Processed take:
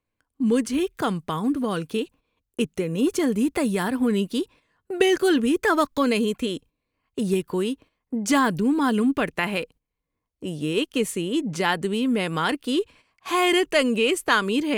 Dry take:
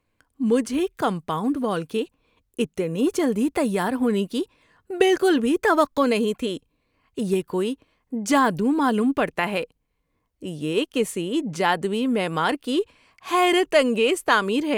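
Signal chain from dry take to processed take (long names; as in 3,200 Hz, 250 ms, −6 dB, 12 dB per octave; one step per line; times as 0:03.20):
noise gate −45 dBFS, range −11 dB
dynamic equaliser 700 Hz, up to −6 dB, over −33 dBFS, Q 0.89
level +1.5 dB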